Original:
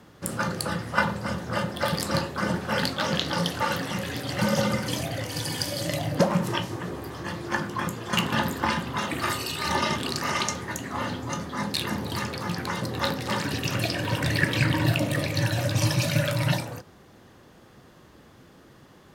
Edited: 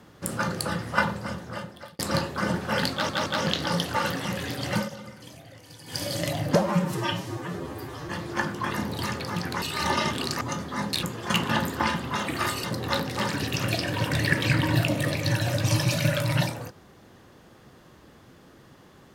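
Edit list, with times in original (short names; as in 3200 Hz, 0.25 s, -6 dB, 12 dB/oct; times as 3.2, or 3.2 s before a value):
0.98–1.99 fade out
2.92 stutter 0.17 s, 3 plays
4.4–5.68 dip -16.5 dB, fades 0.16 s
6.22–7.24 stretch 1.5×
7.86–9.47 swap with 11.84–12.75
10.26–11.22 cut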